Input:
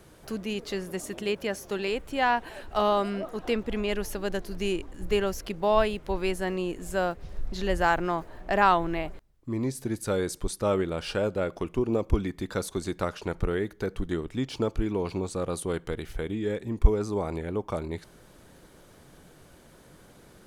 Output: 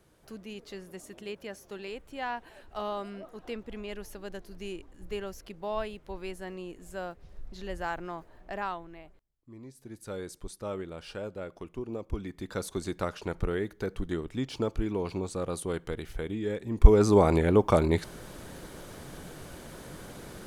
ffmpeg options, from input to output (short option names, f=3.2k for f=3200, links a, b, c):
-af "volume=16.5dB,afade=t=out:st=8.44:d=0.42:silence=0.421697,afade=t=in:st=9.75:d=0.4:silence=0.421697,afade=t=in:st=12.1:d=0.64:silence=0.398107,afade=t=in:st=16.69:d=0.4:silence=0.266073"